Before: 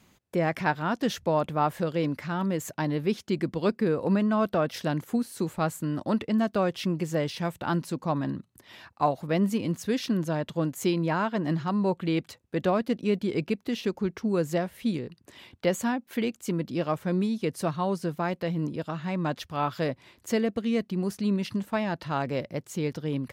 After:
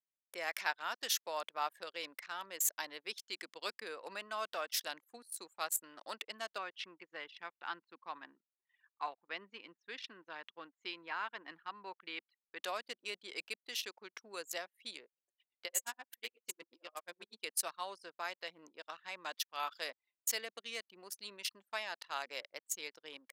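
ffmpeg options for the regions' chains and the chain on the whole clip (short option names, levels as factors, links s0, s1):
-filter_complex "[0:a]asettb=1/sr,asplit=3[s0][s1][s2];[s0]atrim=end=6.584[s3];[s1]atrim=start=6.58:end=12.6,asetpts=PTS-STARTPTS,afade=t=in:d=0.004:c=qsin,afade=t=out:st=6.016:d=0.004:c=qsin,lowpass=2700,equalizer=f=600:t=o:w=0.5:g=-9.5[s4];[s2]atrim=start=12.596[s5];[s3][s4]acrossfade=d=0.004:c1=hsin:c2=qsin[s6];[s6][s5]acrossfade=d=0.004:c1=qsin:c2=hsin,asettb=1/sr,asplit=3[s7][s8][s9];[s7]atrim=end=15.054[s10];[s8]atrim=start=15.05:end=17.4,asetpts=PTS-STARTPTS,afade=t=in:d=0.004:c=qsin,afade=t=out:st=2.346:d=0.004:c=qsin,aecho=1:1:62|124|186|248:0.631|0.177|0.0495|0.0139,atrim=end_sample=103635,aeval=exprs='val(0)*pow(10,-26*(0.5-0.5*cos(2*PI*8.3*n/s))/20)':c=same[s11];[s9]atrim=start=17.396[s12];[s10][s11]acrossfade=d=0.004:c1=hsin:c2=qsin[s13];[s13][s12]acrossfade=d=0.004:c1=qsin:c2=hsin,highpass=470,anlmdn=0.398,aderivative,volume=2.11"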